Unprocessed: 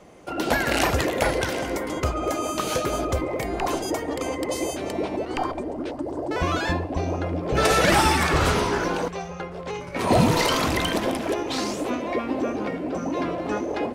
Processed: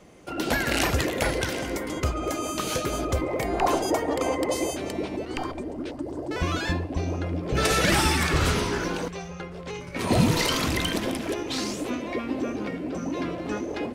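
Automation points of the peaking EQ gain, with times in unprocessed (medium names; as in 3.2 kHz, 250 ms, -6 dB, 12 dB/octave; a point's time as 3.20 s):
peaking EQ 770 Hz 1.8 oct
2.96 s -5.5 dB
3.66 s +4 dB
4.38 s +4 dB
5.06 s -7.5 dB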